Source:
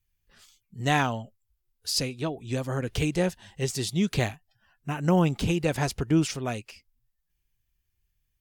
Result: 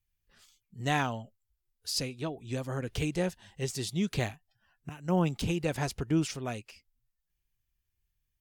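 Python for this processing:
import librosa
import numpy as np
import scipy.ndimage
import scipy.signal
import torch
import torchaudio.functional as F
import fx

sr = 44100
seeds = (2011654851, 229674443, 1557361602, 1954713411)

y = fx.band_widen(x, sr, depth_pct=100, at=(4.89, 5.42))
y = y * 10.0 ** (-5.0 / 20.0)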